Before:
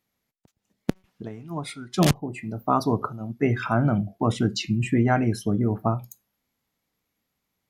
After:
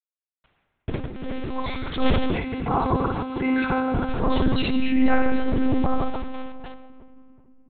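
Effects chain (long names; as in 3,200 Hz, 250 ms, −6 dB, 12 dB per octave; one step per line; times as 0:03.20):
in parallel at +1 dB: downward compressor 8 to 1, threshold −30 dBFS, peak gain reduction 16 dB
on the sum: mains-hum notches 50/100/150 Hz
reverse bouncing-ball delay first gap 60 ms, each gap 1.5×, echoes 5
bit-depth reduction 6 bits, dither none
on a send at −8.5 dB: convolution reverb RT60 2.5 s, pre-delay 5 ms
on the sum: one-pitch LPC vocoder at 8 kHz 260 Hz
transient designer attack −7 dB, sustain +3 dB
0:02.36–0:04.09: notch comb filter 610 Hz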